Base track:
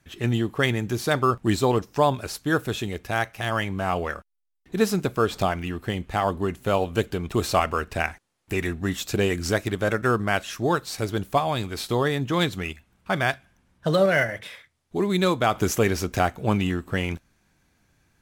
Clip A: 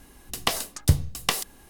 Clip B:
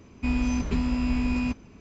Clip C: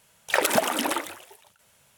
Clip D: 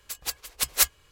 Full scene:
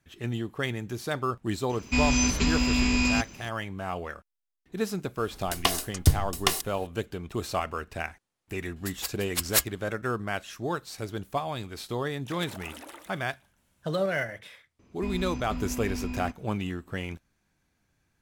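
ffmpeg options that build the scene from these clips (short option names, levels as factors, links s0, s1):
-filter_complex "[2:a]asplit=2[s0][s1];[0:a]volume=0.398[s2];[s0]crystalizer=i=7.5:c=0[s3];[1:a]aecho=1:1:2.8:0.42[s4];[4:a]bandreject=f=6100:w=14[s5];[3:a]acompressor=threshold=0.0447:ratio=6:attack=3.2:release=140:knee=1:detection=peak[s6];[s3]atrim=end=1.8,asetpts=PTS-STARTPTS,afade=t=in:d=0.004:c=hsin,afade=t=out:st=1.796:d=0.004:c=hsin,adelay=1690[s7];[s4]atrim=end=1.69,asetpts=PTS-STARTPTS,volume=0.891,afade=t=in:d=0.004:c=hsin,afade=t=out:st=1.686:d=0.004:c=hsin,adelay=5180[s8];[s5]atrim=end=1.11,asetpts=PTS-STARTPTS,volume=0.75,afade=t=in:d=0.004:c=hsin,afade=t=out:st=1.106:d=0.004:c=hsin,adelay=8760[s9];[s6]atrim=end=1.97,asetpts=PTS-STARTPTS,volume=0.224,afade=t=in:d=0.004:c=hsin,afade=t=out:st=1.966:d=0.004:c=hsin,adelay=11980[s10];[s1]atrim=end=1.8,asetpts=PTS-STARTPTS,volume=0.355,afade=t=in:d=0.004:c=hsin,afade=t=out:st=1.796:d=0.004:c=hsin,adelay=14790[s11];[s2][s7][s8][s9][s10][s11]amix=inputs=6:normalize=0"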